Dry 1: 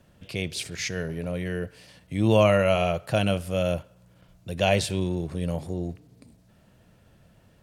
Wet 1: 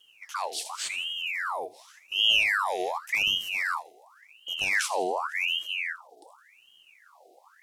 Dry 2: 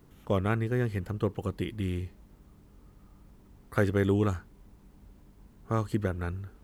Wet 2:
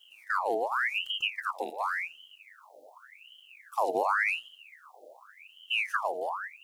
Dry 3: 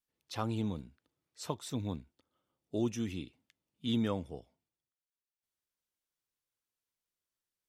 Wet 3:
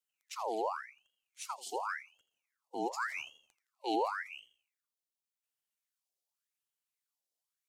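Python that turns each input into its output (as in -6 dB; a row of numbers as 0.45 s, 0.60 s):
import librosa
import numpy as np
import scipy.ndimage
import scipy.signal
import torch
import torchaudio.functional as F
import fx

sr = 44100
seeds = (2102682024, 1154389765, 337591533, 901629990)

y = scipy.signal.sosfilt(scipy.signal.cheby2(4, 60, [590.0, 1600.0], 'bandstop', fs=sr, output='sos'), x)
y = fx.echo_thinned(y, sr, ms=83, feedback_pct=44, hz=180.0, wet_db=-14)
y = fx.ring_lfo(y, sr, carrier_hz=1800.0, swing_pct=70, hz=0.89)
y = y * 10.0 ** (3.5 / 20.0)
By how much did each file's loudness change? -1.0 LU, 0.0 LU, -1.0 LU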